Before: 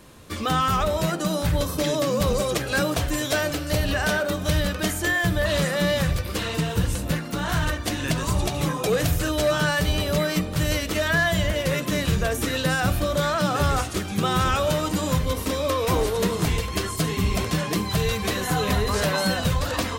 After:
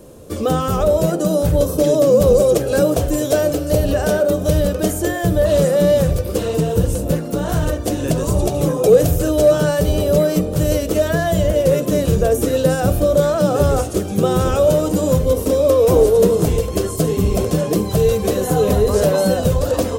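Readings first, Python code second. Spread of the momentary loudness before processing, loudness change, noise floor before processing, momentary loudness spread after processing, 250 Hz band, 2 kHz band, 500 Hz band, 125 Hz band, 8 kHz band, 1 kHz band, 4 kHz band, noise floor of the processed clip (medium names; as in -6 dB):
4 LU, +7.0 dB, -31 dBFS, 7 LU, +7.0 dB, -5.0 dB, +12.0 dB, +6.0 dB, +3.5 dB, +1.0 dB, -3.0 dB, -25 dBFS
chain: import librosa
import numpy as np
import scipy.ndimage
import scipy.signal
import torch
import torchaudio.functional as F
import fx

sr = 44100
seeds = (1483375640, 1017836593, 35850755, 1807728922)

y = fx.graphic_eq(x, sr, hz=(500, 1000, 2000, 4000), db=(10, -6, -11, -7))
y = y * 10.0 ** (5.5 / 20.0)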